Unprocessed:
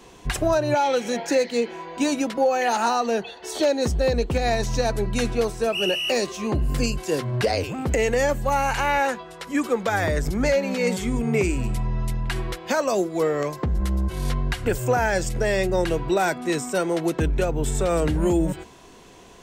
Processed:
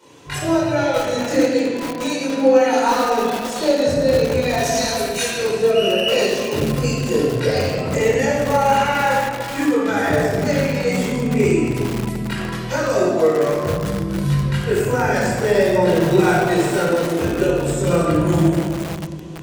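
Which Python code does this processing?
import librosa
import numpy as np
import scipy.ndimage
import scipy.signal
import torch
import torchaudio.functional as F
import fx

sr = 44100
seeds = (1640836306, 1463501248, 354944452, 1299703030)

y = scipy.signal.sosfilt(scipy.signal.butter(4, 91.0, 'highpass', fs=sr, output='sos'), x)
y = fx.tilt_eq(y, sr, slope=3.5, at=(4.63, 5.41))
y = fx.chorus_voices(y, sr, voices=6, hz=0.13, base_ms=23, depth_ms=4.0, mix_pct=60)
y = fx.room_shoebox(y, sr, seeds[0], volume_m3=3200.0, walls='mixed', distance_m=4.7)
y = fx.echo_crushed(y, sr, ms=452, feedback_pct=55, bits=3, wet_db=-10)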